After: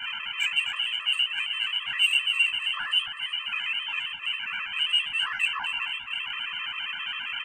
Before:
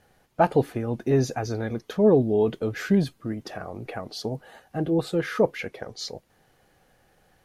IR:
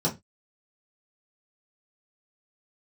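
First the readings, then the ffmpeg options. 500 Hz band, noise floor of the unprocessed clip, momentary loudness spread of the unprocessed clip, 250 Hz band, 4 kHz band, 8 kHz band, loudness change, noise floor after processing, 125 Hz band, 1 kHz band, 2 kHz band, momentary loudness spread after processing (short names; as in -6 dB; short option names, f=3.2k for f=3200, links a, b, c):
under -40 dB, -64 dBFS, 16 LU, under -35 dB, +18.5 dB, -1.0 dB, 0.0 dB, -38 dBFS, under -30 dB, -6.5 dB, +12.0 dB, 8 LU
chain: -filter_complex "[0:a]aeval=exprs='val(0)+0.5*0.0944*sgn(val(0))':c=same,highpass=94,flanger=delay=20:depth=6.7:speed=2.8,lowshelf=f=120:g=9.5,acrossover=split=230|2500[a][b][c];[a]acompressor=threshold=-33dB:ratio=6[d];[d][b][c]amix=inputs=3:normalize=0,lowpass=f=2.7k:t=q:w=0.5098,lowpass=f=2.7k:t=q:w=0.6013,lowpass=f=2.7k:t=q:w=0.9,lowpass=f=2.7k:t=q:w=2.563,afreqshift=-3200,asoftclip=type=tanh:threshold=-14dB,flanger=delay=7.7:depth=8.9:regen=-60:speed=0.95:shape=sinusoidal,firequalizer=gain_entry='entry(180,0);entry(490,-19);entry(1000,5)':delay=0.05:min_phase=1,aecho=1:1:257|514|771|1028:0.282|0.093|0.0307|0.0101,afftfilt=real='re*gt(sin(2*PI*7.5*pts/sr)*(1-2*mod(floor(b*sr/1024/340),2)),0)':imag='im*gt(sin(2*PI*7.5*pts/sr)*(1-2*mod(floor(b*sr/1024/340),2)),0)':win_size=1024:overlap=0.75"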